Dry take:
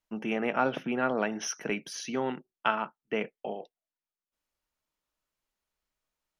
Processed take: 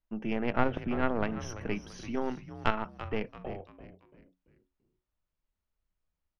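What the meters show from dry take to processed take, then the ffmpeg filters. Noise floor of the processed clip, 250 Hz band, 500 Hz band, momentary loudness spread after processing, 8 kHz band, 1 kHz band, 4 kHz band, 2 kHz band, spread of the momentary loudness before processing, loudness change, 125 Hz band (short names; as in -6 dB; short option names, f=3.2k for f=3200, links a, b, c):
under -85 dBFS, 0.0 dB, -2.5 dB, 12 LU, -12.5 dB, -3.0 dB, -5.5 dB, -4.0 dB, 8 LU, -2.0 dB, +6.5 dB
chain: -filter_complex "[0:a]aeval=exprs='0.335*(cos(1*acos(clip(val(0)/0.335,-1,1)))-cos(1*PI/2))+0.0531*(cos(2*acos(clip(val(0)/0.335,-1,1)))-cos(2*PI/2))+0.0531*(cos(3*acos(clip(val(0)/0.335,-1,1)))-cos(3*PI/2))+0.0106*(cos(6*acos(clip(val(0)/0.335,-1,1)))-cos(6*PI/2))+0.00266*(cos(8*acos(clip(val(0)/0.335,-1,1)))-cos(8*PI/2))':c=same,aemphasis=mode=reproduction:type=bsi,asplit=5[a][b][c][d][e];[b]adelay=338,afreqshift=-92,volume=-13dB[f];[c]adelay=676,afreqshift=-184,volume=-21dB[g];[d]adelay=1014,afreqshift=-276,volume=-28.9dB[h];[e]adelay=1352,afreqshift=-368,volume=-36.9dB[i];[a][f][g][h][i]amix=inputs=5:normalize=0"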